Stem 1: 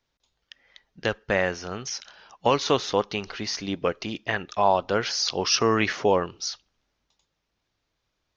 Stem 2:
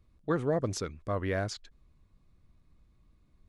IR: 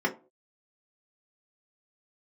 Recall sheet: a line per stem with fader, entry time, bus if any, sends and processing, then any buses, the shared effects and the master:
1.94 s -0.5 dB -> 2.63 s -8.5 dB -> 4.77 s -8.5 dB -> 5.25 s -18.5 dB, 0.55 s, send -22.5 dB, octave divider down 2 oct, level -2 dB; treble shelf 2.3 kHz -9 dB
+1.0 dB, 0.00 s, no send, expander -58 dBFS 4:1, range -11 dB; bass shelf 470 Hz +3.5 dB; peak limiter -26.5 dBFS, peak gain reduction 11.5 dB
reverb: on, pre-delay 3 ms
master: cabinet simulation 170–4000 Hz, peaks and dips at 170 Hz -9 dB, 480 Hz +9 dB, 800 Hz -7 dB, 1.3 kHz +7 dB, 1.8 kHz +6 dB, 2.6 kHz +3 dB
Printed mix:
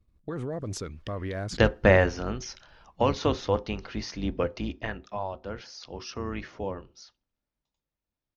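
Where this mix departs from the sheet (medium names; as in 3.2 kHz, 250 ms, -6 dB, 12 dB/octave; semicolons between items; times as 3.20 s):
stem 1 -0.5 dB -> +6.5 dB; master: missing cabinet simulation 170–4000 Hz, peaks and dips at 170 Hz -9 dB, 480 Hz +9 dB, 800 Hz -7 dB, 1.3 kHz +7 dB, 1.8 kHz +6 dB, 2.6 kHz +3 dB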